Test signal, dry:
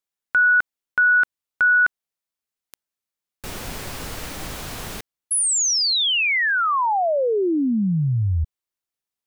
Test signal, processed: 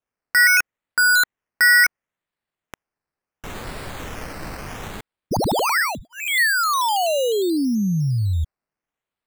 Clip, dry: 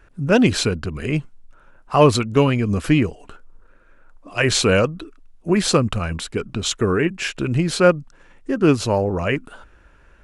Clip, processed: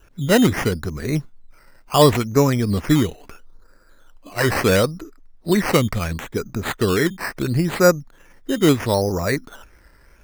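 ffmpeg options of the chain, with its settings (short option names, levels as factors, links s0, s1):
-af "asuperstop=centerf=3200:order=4:qfactor=1.4,acrusher=samples=10:mix=1:aa=0.000001:lfo=1:lforange=6:lforate=0.73,adynamicequalizer=threshold=0.01:dfrequency=1900:dqfactor=5.9:tfrequency=1900:tqfactor=5.9:attack=5:release=100:ratio=0.375:range=3:mode=boostabove:tftype=bell"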